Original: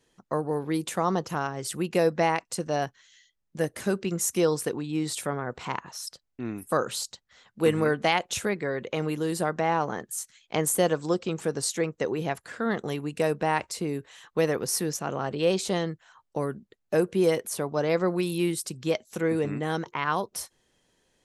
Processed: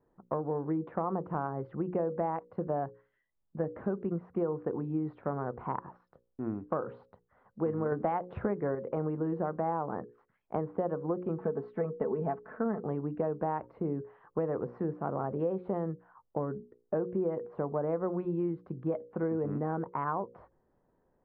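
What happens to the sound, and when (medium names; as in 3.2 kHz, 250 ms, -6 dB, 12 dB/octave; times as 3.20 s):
7.92–8.75 s: gain +6.5 dB
11.38–12.81 s: comb 4.6 ms, depth 66%
whole clip: inverse Chebyshev low-pass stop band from 6.7 kHz, stop band 80 dB; hum notches 60/120/180/240/300/360/420/480/540 Hz; compression, threshold -28 dBFS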